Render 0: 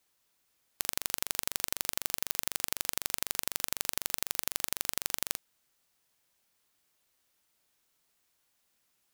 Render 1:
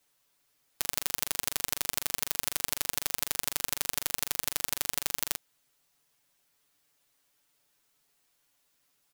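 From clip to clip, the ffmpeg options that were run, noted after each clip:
-af "aecho=1:1:7:0.83"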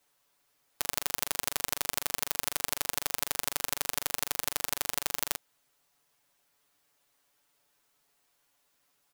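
-af "equalizer=f=810:w=0.57:g=5,volume=-1dB"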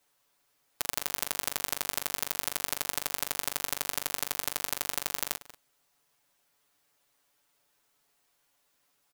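-filter_complex "[0:a]asplit=2[a][b];[b]adelay=186.6,volume=-16dB,highshelf=f=4k:g=-4.2[c];[a][c]amix=inputs=2:normalize=0"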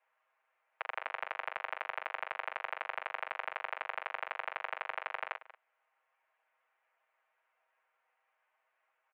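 -af "highpass=f=470:t=q:w=0.5412,highpass=f=470:t=q:w=1.307,lowpass=f=2.4k:t=q:w=0.5176,lowpass=f=2.4k:t=q:w=0.7071,lowpass=f=2.4k:t=q:w=1.932,afreqshift=75,volume=1dB"

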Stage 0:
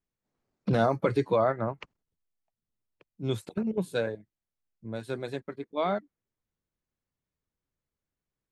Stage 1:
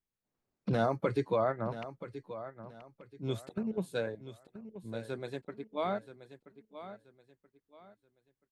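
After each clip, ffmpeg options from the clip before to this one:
-af "aecho=1:1:979|1958|2937:0.224|0.0672|0.0201,volume=-5dB"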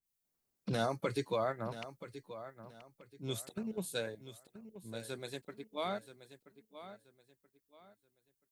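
-af "crystalizer=i=3:c=0,adynamicequalizer=threshold=0.00398:dfrequency=2200:dqfactor=0.7:tfrequency=2200:tqfactor=0.7:attack=5:release=100:ratio=0.375:range=2:mode=boostabove:tftype=highshelf,volume=-5dB"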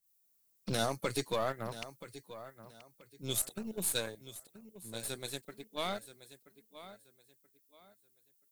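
-af "crystalizer=i=3:c=0,aeval=exprs='0.112*(cos(1*acos(clip(val(0)/0.112,-1,1)))-cos(1*PI/2))+0.00355*(cos(7*acos(clip(val(0)/0.112,-1,1)))-cos(7*PI/2))+0.00631*(cos(8*acos(clip(val(0)/0.112,-1,1)))-cos(8*PI/2))':c=same"

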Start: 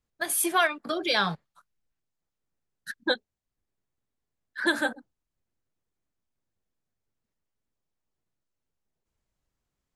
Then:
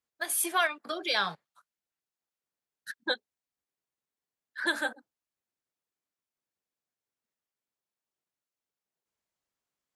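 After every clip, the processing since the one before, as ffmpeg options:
-af "highpass=f=550:p=1,volume=-2.5dB"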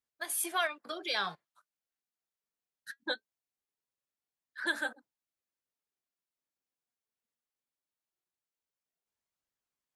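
-af "flanger=delay=0.5:depth=4.1:regen=77:speed=0.21:shape=triangular"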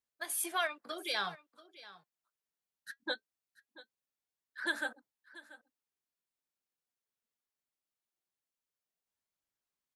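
-af "aecho=1:1:685:0.119,volume=-2dB"

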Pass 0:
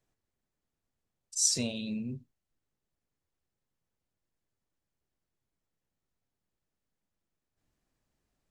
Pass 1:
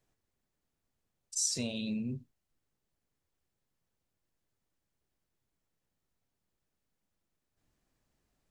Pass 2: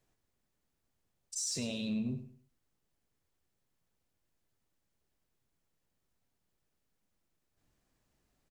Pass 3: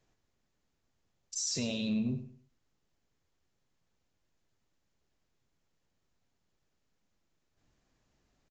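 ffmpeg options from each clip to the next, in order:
-af "acompressor=threshold=-34dB:ratio=2.5,volume=2dB"
-filter_complex "[0:a]alimiter=level_in=3.5dB:limit=-24dB:level=0:latency=1:release=13,volume=-3.5dB,aeval=exprs='0.0422*(cos(1*acos(clip(val(0)/0.0422,-1,1)))-cos(1*PI/2))+0.00133*(cos(5*acos(clip(val(0)/0.0422,-1,1)))-cos(5*PI/2))':c=same,asplit=2[a][b];[b]aecho=0:1:102|204|306:0.237|0.0711|0.0213[c];[a][c]amix=inputs=2:normalize=0"
-af "aresample=16000,aresample=44100,volume=3dB"

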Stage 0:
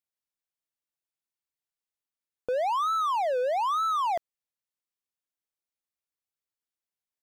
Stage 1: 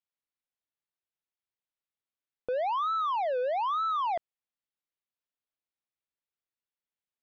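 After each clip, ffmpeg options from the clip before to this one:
-af "lowpass=f=4.1k:w=0.5412,lowpass=f=4.1k:w=1.3066,volume=-2.5dB"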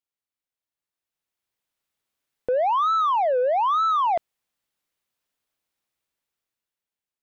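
-af "dynaudnorm=f=300:g=9:m=12dB,asoftclip=type=tanh:threshold=-18dB"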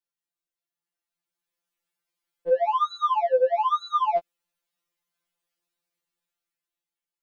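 -af "afftfilt=real='re*2.83*eq(mod(b,8),0)':imag='im*2.83*eq(mod(b,8),0)':win_size=2048:overlap=0.75"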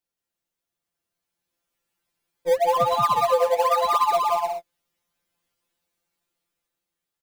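-filter_complex "[0:a]asplit=2[a][b];[b]acrusher=samples=22:mix=1:aa=0.000001:lfo=1:lforange=22:lforate=2.9,volume=-10.5dB[c];[a][c]amix=inputs=2:normalize=0,aecho=1:1:180|288|352.8|391.7|415:0.631|0.398|0.251|0.158|0.1,acompressor=threshold=-19dB:ratio=6,volume=3dB"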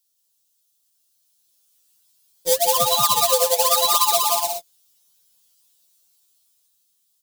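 -af "acrusher=bits=5:mode=log:mix=0:aa=0.000001,aexciter=amount=6.7:drive=5.5:freq=3.1k,volume=-1dB"

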